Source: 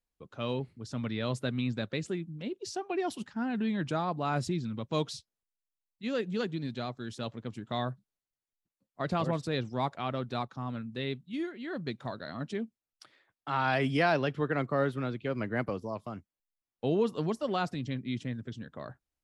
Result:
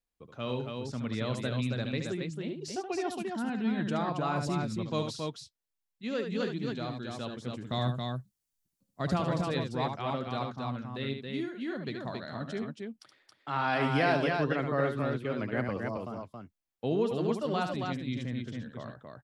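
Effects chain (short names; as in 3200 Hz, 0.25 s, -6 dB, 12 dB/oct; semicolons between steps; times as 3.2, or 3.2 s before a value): 7.65–9.17 tone controls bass +7 dB, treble +10 dB; loudspeakers at several distances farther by 25 m -7 dB, 94 m -4 dB; gain -1.5 dB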